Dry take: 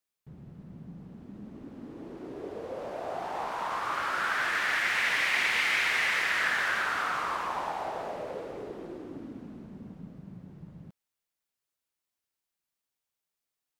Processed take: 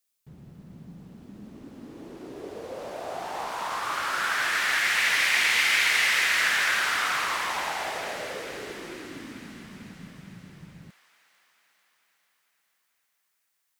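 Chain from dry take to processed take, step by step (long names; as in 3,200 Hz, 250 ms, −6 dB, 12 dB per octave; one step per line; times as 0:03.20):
high-shelf EQ 3,100 Hz +11 dB
delay with a high-pass on its return 444 ms, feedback 64%, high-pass 1,800 Hz, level −6 dB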